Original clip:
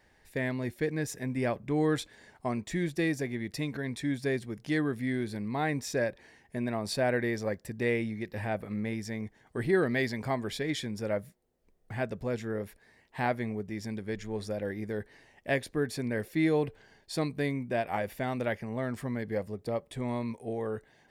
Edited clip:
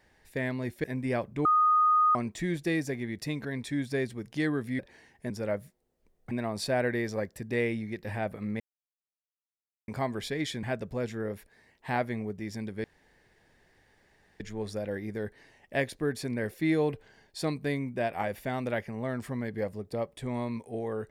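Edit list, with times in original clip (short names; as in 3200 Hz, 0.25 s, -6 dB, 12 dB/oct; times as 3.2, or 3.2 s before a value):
0.84–1.16 cut
1.77–2.47 bleep 1240 Hz -19.5 dBFS
5.11–6.09 cut
8.89–10.17 mute
10.92–11.93 move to 6.6
14.14 insert room tone 1.56 s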